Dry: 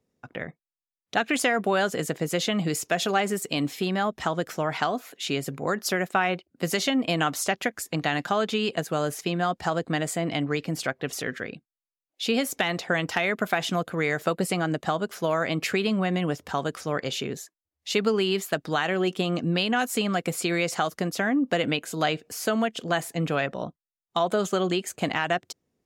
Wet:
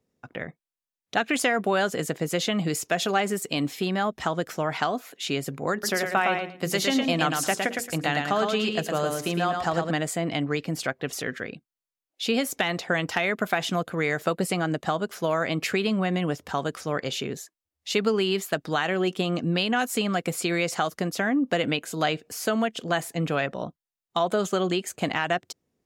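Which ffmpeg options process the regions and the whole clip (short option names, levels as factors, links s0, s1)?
-filter_complex "[0:a]asettb=1/sr,asplit=3[s0][s1][s2];[s0]atrim=end=5.724[s3];[s1]atrim=start=5.72:end=9.91,asetpts=PTS-STARTPTS,afade=t=in:d=0.004:c=qsin,afade=t=out:st=4.186:d=0.004:c=qsin,bandreject=f=60:t=h:w=6,bandreject=f=120:t=h:w=6,bandreject=f=180:t=h:w=6,bandreject=f=240:t=h:w=6,bandreject=f=300:t=h:w=6,bandreject=f=360:t=h:w=6,bandreject=f=420:t=h:w=6,bandreject=f=480:t=h:w=6,aecho=1:1:111|222|333:0.596|0.113|0.0215,atrim=end_sample=184779[s4];[s2]atrim=start=9.906[s5];[s3][s4]acrossfade=d=0.004:c1=hsin:c2=qsin[s6];[s6][s5]acrossfade=d=0.004:c1=qsin:c2=hsin"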